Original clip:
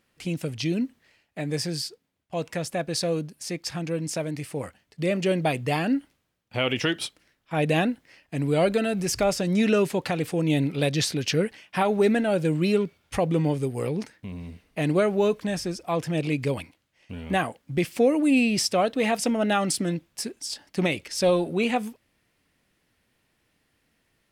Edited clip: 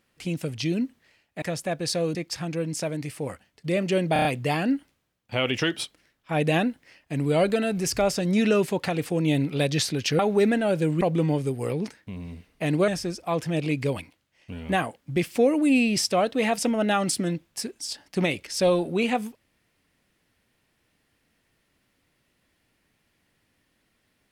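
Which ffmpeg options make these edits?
-filter_complex "[0:a]asplit=10[a][b][c][d][e][f][g][h][i][j];[a]atrim=end=1.422[k];[b]atrim=start=2.498:end=3.232[l];[c]atrim=start=3.488:end=5.502[m];[d]atrim=start=5.468:end=5.502[n];[e]atrim=start=5.468:end=5.502[o];[f]atrim=start=5.468:end=5.502[p];[g]atrim=start=5.468:end=11.412[q];[h]atrim=start=11.818:end=12.642[r];[i]atrim=start=13.168:end=15.042[s];[j]atrim=start=15.488[t];[k][l]acrossfade=d=0.004:c1=hsin:c2=hsin[u];[u][m]acrossfade=d=0.004:c1=hsin:c2=hsin[v];[v][n]acrossfade=d=0.004:c1=hsin:c2=hsin[w];[w][o]acrossfade=d=0.004:c1=hsin:c2=hsin[x];[x][p]acrossfade=d=0.004:c1=hsin:c2=hsin[y];[y][q]acrossfade=d=0.004:c1=hsin:c2=hsin[z];[z][r]acrossfade=d=0.004:c1=hsin:c2=hsin[aa];[aa][s]acrossfade=d=0.004:c1=hsin:c2=hsin[ab];[ab][t]acrossfade=d=0.004:c1=hsin:c2=hsin"

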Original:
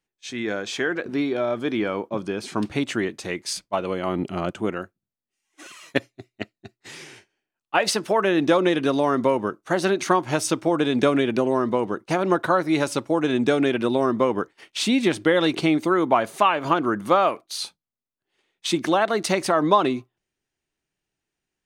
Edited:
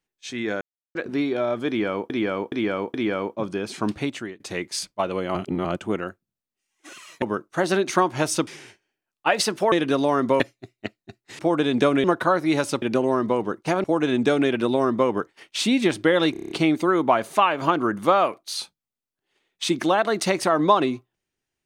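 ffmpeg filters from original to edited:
-filter_complex "[0:a]asplit=23[a][b][c][d][e][f][g][h][i][j][k][l][m][n][o][p][q][r][s][t][u][v][w];[a]atrim=end=0.61,asetpts=PTS-STARTPTS,afade=t=out:st=0.606:d=0.004:c=hsin[x];[b]atrim=start=0.61:end=0.95,asetpts=PTS-STARTPTS,volume=0[y];[c]atrim=start=0.95:end=2.102,asetpts=PTS-STARTPTS,afade=t=in:d=0.004:c=hsin[z];[d]atrim=start=1.678:end=2.102[aa];[e]atrim=start=1.678:end=2.102[ab];[f]atrim=start=1.678:end=3.14,asetpts=PTS-STARTPTS,afade=t=out:st=1.002:d=0.46:silence=0.0794328[ac];[g]atrim=start=3.14:end=4.092,asetpts=PTS-STARTPTS,afade=t=in:d=0.004:c=hsin:silence=0.0794328[ad];[h]atrim=start=4.088:end=4.392,asetpts=PTS-STARTPTS,areverse[ae];[i]atrim=start=4.388:end=5.962[af];[j]atrim=start=9.348:end=10.602[ag];[k]atrim=start=6.948:end=8.202[ah];[l]atrim=start=8.668:end=9.352[ai];[m]atrim=start=5.958:end=6.952[aj];[n]atrim=start=10.598:end=11.252[ak];[o]atrim=start=12.268:end=13.052[al];[p]atrim=start=11.248:end=12.272[am];[q]atrim=start=13.048:end=15.562[an];[r]atrim=start=15.528:end=15.562[ao];[s]atrim=start=15.528:end=15.562[ap];[t]atrim=start=15.528:end=15.562[aq];[u]atrim=start=15.528:end=15.562[ar];[v]atrim=start=15.528:end=15.562[as];[w]atrim=start=15.528[at];[x][y][z]concat=n=3:v=0:a=1[au];[au][aa]acrossfade=d=0.004:c1=hsin:c2=hsin[av];[av][ab]acrossfade=d=0.004:c1=hsin:c2=hsin[aw];[ac][ad]concat=n=2:v=0:a=1[ax];[aw][ax]acrossfade=d=0.004:c1=hsin:c2=hsin[ay];[ay][ae]acrossfade=d=0.004:c1=hsin:c2=hsin[az];[az][af]acrossfade=d=0.004:c1=hsin:c2=hsin[ba];[ba][ag]acrossfade=d=0.004:c1=hsin:c2=hsin[bb];[bb][ah]acrossfade=d=0.004:c1=hsin:c2=hsin[bc];[bc][ai]acrossfade=d=0.004:c1=hsin:c2=hsin[bd];[bd][aj]acrossfade=d=0.004:c1=hsin:c2=hsin[be];[be][ak]acrossfade=d=0.004:c1=hsin:c2=hsin[bf];[bf][al]acrossfade=d=0.004:c1=hsin:c2=hsin[bg];[bg][am]acrossfade=d=0.004:c1=hsin:c2=hsin[bh];[bh][an]acrossfade=d=0.004:c1=hsin:c2=hsin[bi];[bi][ao]acrossfade=d=0.004:c1=hsin:c2=hsin[bj];[bj][ap]acrossfade=d=0.004:c1=hsin:c2=hsin[bk];[bk][aq]acrossfade=d=0.004:c1=hsin:c2=hsin[bl];[bl][ar]acrossfade=d=0.004:c1=hsin:c2=hsin[bm];[bm][as]acrossfade=d=0.004:c1=hsin:c2=hsin[bn];[bn][at]acrossfade=d=0.004:c1=hsin:c2=hsin"

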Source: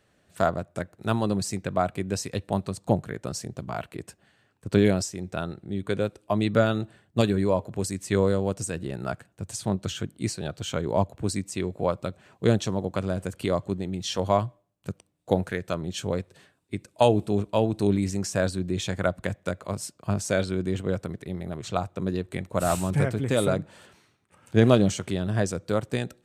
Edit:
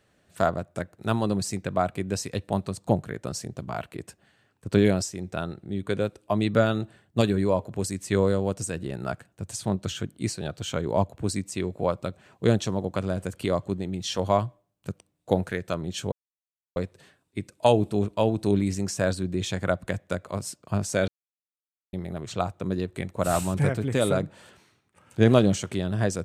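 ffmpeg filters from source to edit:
-filter_complex "[0:a]asplit=4[a][b][c][d];[a]atrim=end=16.12,asetpts=PTS-STARTPTS,afade=t=out:st=16.116:d=0.004:c=hsin,apad=pad_dur=0.64[e];[b]atrim=start=16.12:end=20.44,asetpts=PTS-STARTPTS,afade=t=in:d=0.004:c=hsin,afade=t=out:st=4.316:d=0.004:c=hsin[f];[c]atrim=start=20.44:end=21.29,asetpts=PTS-STARTPTS,volume=0[g];[d]atrim=start=21.29,asetpts=PTS-STARTPTS,afade=t=in:d=0.004:c=hsin[h];[e][f][g][h]concat=n=4:v=0:a=1"

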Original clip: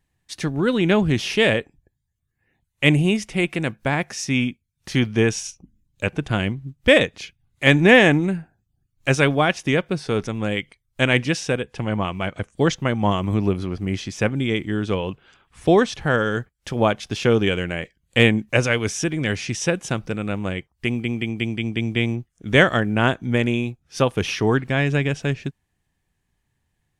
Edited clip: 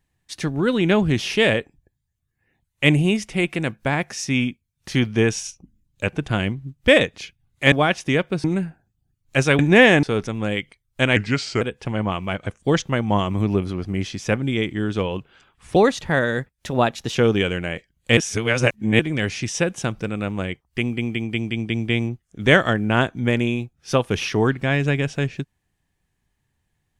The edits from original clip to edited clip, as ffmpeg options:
-filter_complex "[0:a]asplit=11[a][b][c][d][e][f][g][h][i][j][k];[a]atrim=end=7.722[l];[b]atrim=start=9.308:end=10.032[m];[c]atrim=start=8.158:end=9.312[n];[d]atrim=start=7.718:end=8.162[o];[e]atrim=start=10.028:end=11.164[p];[f]atrim=start=11.16:end=11.54,asetpts=PTS-STARTPTS,asetrate=37044,aresample=44100[q];[g]atrim=start=11.536:end=15.694[r];[h]atrim=start=15.69:end=17.22,asetpts=PTS-STARTPTS,asetrate=48510,aresample=44100,atrim=end_sample=61339,asetpts=PTS-STARTPTS[s];[i]atrim=start=17.216:end=18.242[t];[j]atrim=start=18.238:end=19.062,asetpts=PTS-STARTPTS,areverse[u];[k]atrim=start=19.058[v];[l][m]acrossfade=d=0.004:c1=hsin:c2=hsin[w];[w][n]acrossfade=d=0.004:c1=hsin:c2=hsin[x];[x][o]acrossfade=d=0.004:c1=hsin:c2=hsin[y];[y][p]acrossfade=d=0.004:c1=hsin:c2=hsin[z];[z][q]acrossfade=d=0.004:c1=hsin:c2=hsin[aa];[aa][r]acrossfade=d=0.004:c1=hsin:c2=hsin[ab];[ab][s]acrossfade=d=0.004:c1=hsin:c2=hsin[ac];[ac][t]acrossfade=d=0.004:c1=hsin:c2=hsin[ad];[ad][u]acrossfade=d=0.004:c1=hsin:c2=hsin[ae];[ae][v]acrossfade=d=0.004:c1=hsin:c2=hsin"

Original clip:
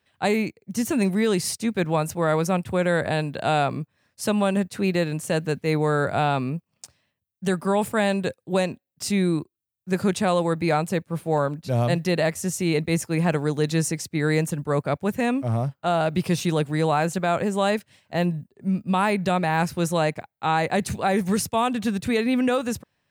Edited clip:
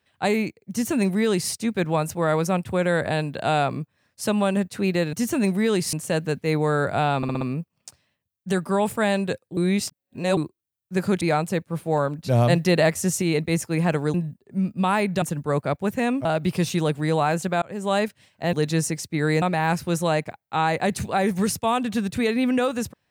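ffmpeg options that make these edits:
-filter_complex "[0:a]asplit=18[a][b][c][d][e][f][g][h][i][j][k][l][m][n][o][p][q][r];[a]atrim=end=5.132[s];[b]atrim=start=0.708:end=1.512[t];[c]atrim=start=5.128:end=6.432[u];[d]atrim=start=6.368:end=6.432[v];[e]atrim=start=6.368:end=6.432[w];[f]atrim=start=6.368:end=6.432[x];[g]atrim=start=6.368:end=8.532[y];[h]atrim=start=8.528:end=9.332,asetpts=PTS-STARTPTS,areverse[z];[i]atrim=start=9.328:end=10.172[aa];[j]atrim=start=10.608:end=11.592[ab];[k]atrim=start=11.588:end=12.622,asetpts=PTS-STARTPTS,volume=3.5dB[ac];[l]atrim=start=12.618:end=13.542[ad];[m]atrim=start=18.238:end=19.322[ae];[n]atrim=start=14.428:end=15.462[af];[o]atrim=start=15.958:end=17.33,asetpts=PTS-STARTPTS,afade=t=out:st=1.368:d=0.004:c=hsin[ag];[p]atrim=start=17.33:end=18.242,asetpts=PTS-STARTPTS,afade=t=in:d=0.31[ah];[q]atrim=start=13.538:end=14.432[ai];[r]atrim=start=19.318[aj];[s][t]acrossfade=d=0.004:c1=hsin:c2=hsin[ak];[ak][u]acrossfade=d=0.004:c1=hsin:c2=hsin[al];[al][v]acrossfade=d=0.004:c1=hsin:c2=hsin[am];[am][w]acrossfade=d=0.004:c1=hsin:c2=hsin[an];[an][x]acrossfade=d=0.004:c1=hsin:c2=hsin[ao];[ao][y]acrossfade=d=0.004:c1=hsin:c2=hsin[ap];[ap][z]acrossfade=d=0.004:c1=hsin:c2=hsin[aq];[aq][aa]acrossfade=d=0.004:c1=hsin:c2=hsin[ar];[ar][ab]acrossfade=d=0.004:c1=hsin:c2=hsin[as];[as][ac]acrossfade=d=0.004:c1=hsin:c2=hsin[at];[at][ad]acrossfade=d=0.004:c1=hsin:c2=hsin[au];[au][ae]acrossfade=d=0.004:c1=hsin:c2=hsin[av];[av][af]acrossfade=d=0.004:c1=hsin:c2=hsin[aw];[ag][ah]concat=n=2:v=0:a=1[ax];[aw][ax]acrossfade=d=0.004:c1=hsin:c2=hsin[ay];[ay][ai]acrossfade=d=0.004:c1=hsin:c2=hsin[az];[az][aj]acrossfade=d=0.004:c1=hsin:c2=hsin"

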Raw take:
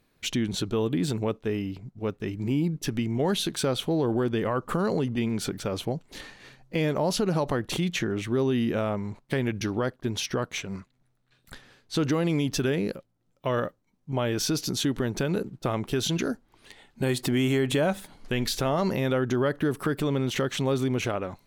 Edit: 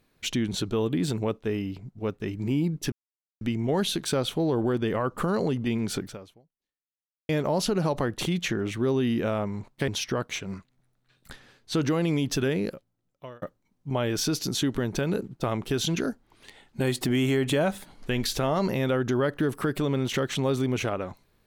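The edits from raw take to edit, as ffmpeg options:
-filter_complex "[0:a]asplit=5[a][b][c][d][e];[a]atrim=end=2.92,asetpts=PTS-STARTPTS,afade=t=out:st=2.916:d=0.004:c=hsin,apad=pad_dur=0.49[f];[b]atrim=start=2.92:end=6.8,asetpts=PTS-STARTPTS,afade=t=in:d=0.004:c=hsin,afade=t=out:st=2.62:d=1.26:c=exp[g];[c]atrim=start=6.8:end=9.392,asetpts=PTS-STARTPTS,afade=t=in:d=0.004:c=hsin[h];[d]atrim=start=10.098:end=13.64,asetpts=PTS-STARTPTS,afade=t=out:st=2.812:d=0.73[i];[e]atrim=start=13.64,asetpts=PTS-STARTPTS,afade=t=in:d=0.004:c=hsin[j];[f][g][h]concat=n=3:v=0:a=1[k];[i][j]concat=n=2:v=0:a=1[l];[k][l]acrossfade=d=0.004:c1=hsin:c2=hsin"

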